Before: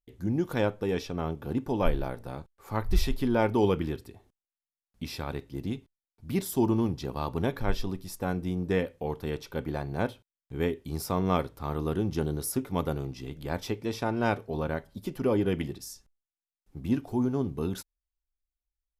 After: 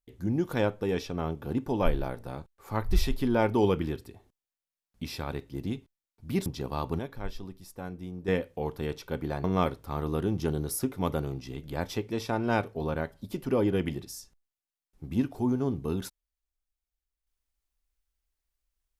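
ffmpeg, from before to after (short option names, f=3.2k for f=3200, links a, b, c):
-filter_complex "[0:a]asplit=5[a][b][c][d][e];[a]atrim=end=6.462[f];[b]atrim=start=6.898:end=7.432[g];[c]atrim=start=7.428:end=8.722,asetpts=PTS-STARTPTS,volume=-8.5dB[h];[d]atrim=start=8.718:end=9.882[i];[e]atrim=start=11.168[j];[f][g]acrossfade=d=0.004:c1=hsin:c2=hsin[k];[k][h]acrossfade=d=0.004:c1=hsin:c2=hsin[l];[l][i]acrossfade=d=0.004:c1=hsin:c2=hsin[m];[m][j]acrossfade=d=0.004:c1=hsin:c2=hsin"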